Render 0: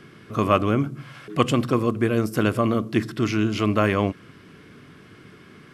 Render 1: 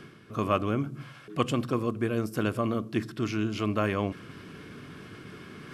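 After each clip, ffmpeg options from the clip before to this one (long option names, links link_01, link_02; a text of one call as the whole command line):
ffmpeg -i in.wav -af "bandreject=frequency=2000:width=16,areverse,acompressor=mode=upward:threshold=-27dB:ratio=2.5,areverse,volume=-7dB" out.wav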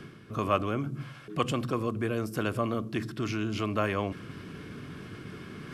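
ffmpeg -i in.wav -filter_complex "[0:a]lowshelf=frequency=240:gain=5,acrossover=split=430[link_01][link_02];[link_01]alimiter=level_in=2.5dB:limit=-24dB:level=0:latency=1,volume=-2.5dB[link_03];[link_03][link_02]amix=inputs=2:normalize=0" out.wav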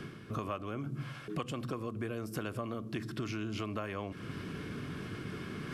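ffmpeg -i in.wav -af "acompressor=threshold=-35dB:ratio=12,volume=1.5dB" out.wav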